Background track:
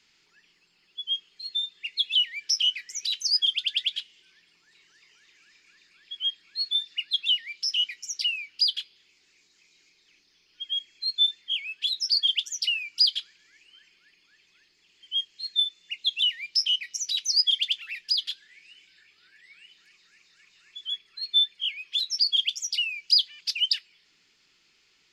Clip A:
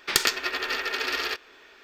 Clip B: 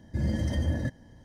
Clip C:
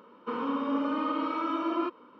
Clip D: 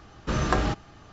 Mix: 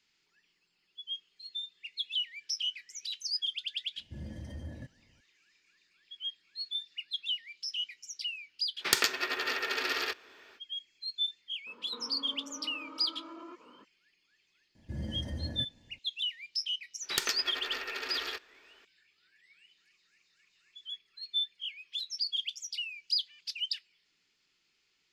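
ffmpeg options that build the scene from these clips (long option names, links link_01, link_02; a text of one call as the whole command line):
ffmpeg -i bed.wav -i cue0.wav -i cue1.wav -i cue2.wav -filter_complex "[2:a]asplit=2[link_01][link_02];[1:a]asplit=2[link_03][link_04];[0:a]volume=-10dB[link_05];[link_03]highpass=frequency=73:width=0.5412,highpass=frequency=73:width=1.3066[link_06];[3:a]acompressor=threshold=-41dB:ratio=10:attack=2.9:release=67:knee=1:detection=rms[link_07];[link_01]atrim=end=1.24,asetpts=PTS-STARTPTS,volume=-15dB,afade=type=in:duration=0.004:curve=hsin,afade=type=out:start_time=1.236:duration=0.004:curve=hsin,adelay=175077S[link_08];[link_06]atrim=end=1.83,asetpts=PTS-STARTPTS,volume=-4dB,afade=type=in:duration=0.05,afade=type=out:start_time=1.78:duration=0.05,adelay=8770[link_09];[link_07]atrim=end=2.19,asetpts=PTS-STARTPTS,volume=-2.5dB,afade=type=in:duration=0.02,afade=type=out:start_time=2.17:duration=0.02,adelay=11660[link_10];[link_02]atrim=end=1.24,asetpts=PTS-STARTPTS,volume=-10dB,afade=type=in:duration=0.004:curve=hsin,afade=type=out:start_time=1.236:duration=0.004:curve=hsin,adelay=14750[link_11];[link_04]atrim=end=1.83,asetpts=PTS-STARTPTS,volume=-9.5dB,afade=type=in:duration=0.004:curve=hsin,afade=type=out:start_time=1.826:duration=0.004:curve=hsin,adelay=17020[link_12];[link_05][link_08][link_09][link_10][link_11][link_12]amix=inputs=6:normalize=0" out.wav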